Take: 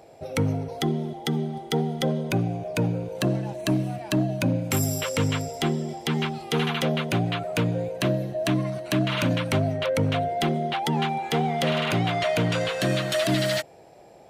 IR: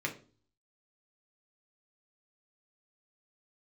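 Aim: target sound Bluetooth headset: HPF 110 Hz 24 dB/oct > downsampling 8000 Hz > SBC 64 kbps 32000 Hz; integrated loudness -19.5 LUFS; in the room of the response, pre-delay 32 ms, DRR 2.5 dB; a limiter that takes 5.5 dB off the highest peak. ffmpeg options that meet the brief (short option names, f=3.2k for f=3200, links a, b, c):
-filter_complex "[0:a]alimiter=limit=-18dB:level=0:latency=1,asplit=2[a][b];[1:a]atrim=start_sample=2205,adelay=32[c];[b][c]afir=irnorm=-1:irlink=0,volume=-7.5dB[d];[a][d]amix=inputs=2:normalize=0,highpass=f=110:w=0.5412,highpass=f=110:w=1.3066,aresample=8000,aresample=44100,volume=7.5dB" -ar 32000 -c:a sbc -b:a 64k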